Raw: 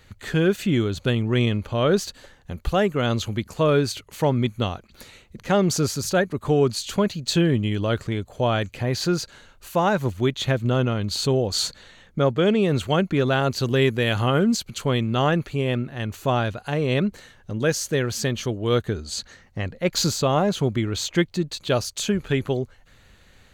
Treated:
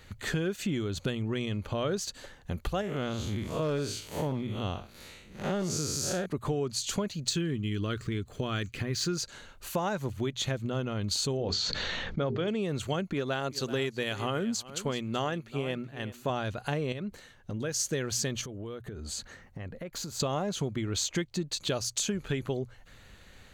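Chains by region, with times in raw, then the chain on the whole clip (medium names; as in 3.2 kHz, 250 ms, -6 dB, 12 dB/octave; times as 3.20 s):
2.81–6.26 s: spectral blur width 140 ms + overload inside the chain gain 16 dB
7.30–9.17 s: median filter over 3 samples + high-order bell 700 Hz -9.5 dB 1.1 oct
11.37–12.48 s: low-pass 5.1 kHz 24 dB/octave + hum notches 50/100/150/200/250/300/350/400/450 Hz + decay stretcher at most 26 dB/s
13.13–16.30 s: bass shelf 140 Hz -8 dB + delay 379 ms -15.5 dB + upward expansion, over -39 dBFS
16.92–17.80 s: gate -41 dBFS, range -6 dB + compression 2.5:1, threshold -33 dBFS
18.41–20.20 s: peaking EQ 4.7 kHz -7 dB 1.6 oct + compression 16:1, threshold -35 dBFS
whole clip: dynamic bell 6.7 kHz, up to +7 dB, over -44 dBFS, Q 1.2; compression 6:1, threshold -28 dBFS; hum notches 60/120 Hz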